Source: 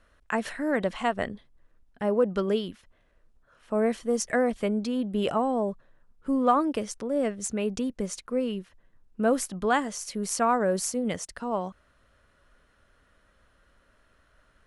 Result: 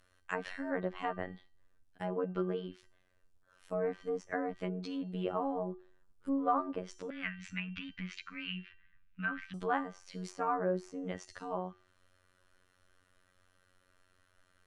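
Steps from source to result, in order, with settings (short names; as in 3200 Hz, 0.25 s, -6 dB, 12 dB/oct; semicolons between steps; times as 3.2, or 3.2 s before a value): high shelf 3300 Hz +8.5 dB; resonator 390 Hz, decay 0.41 s, harmonics all, mix 70%; robotiser 91.4 Hz; 7.1–9.54 EQ curve 220 Hz 0 dB, 450 Hz -28 dB, 1500 Hz +8 dB, 2500 Hz +14 dB, 8300 Hz -25 dB; treble ducked by the level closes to 1500 Hz, closed at -35.5 dBFS; gain +3.5 dB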